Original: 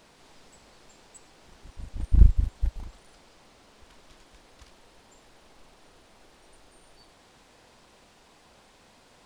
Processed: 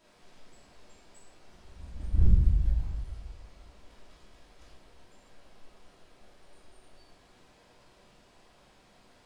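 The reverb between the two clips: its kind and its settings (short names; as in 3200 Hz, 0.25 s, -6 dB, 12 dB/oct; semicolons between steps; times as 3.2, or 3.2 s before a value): shoebox room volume 410 m³, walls mixed, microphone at 2.9 m; gain -12 dB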